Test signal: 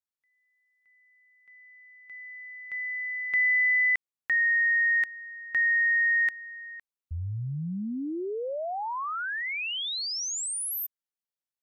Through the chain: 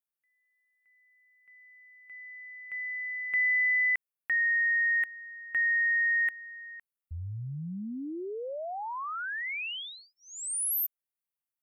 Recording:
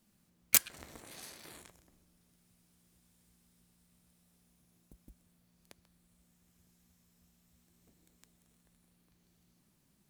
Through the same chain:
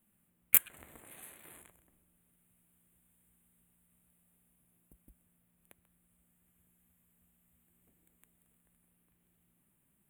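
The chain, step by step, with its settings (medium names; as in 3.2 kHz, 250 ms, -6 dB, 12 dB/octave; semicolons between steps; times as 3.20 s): Butterworth band-stop 5.2 kHz, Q 0.83; treble shelf 3 kHz +8 dB; trim -4.5 dB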